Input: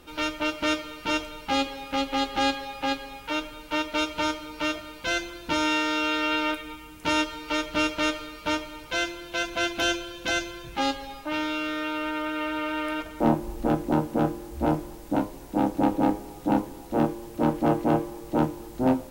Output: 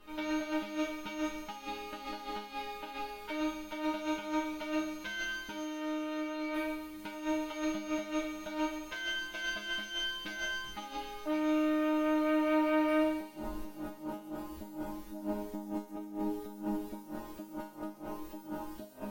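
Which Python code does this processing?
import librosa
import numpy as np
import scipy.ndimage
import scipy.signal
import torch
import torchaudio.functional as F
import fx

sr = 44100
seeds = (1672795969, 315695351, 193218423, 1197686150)

y = fx.spec_trails(x, sr, decay_s=0.67)
y = fx.peak_eq(y, sr, hz=7900.0, db=-5.5, octaves=1.3)
y = fx.over_compress(y, sr, threshold_db=-29.0, ratio=-0.5)
y = fx.resonator_bank(y, sr, root=56, chord='fifth', decay_s=0.41)
y = fx.echo_wet_highpass(y, sr, ms=134, feedback_pct=80, hz=5400.0, wet_db=-5.0)
y = fx.band_squash(y, sr, depth_pct=40, at=(13.37, 13.98))
y = y * 10.0 ** (8.0 / 20.0)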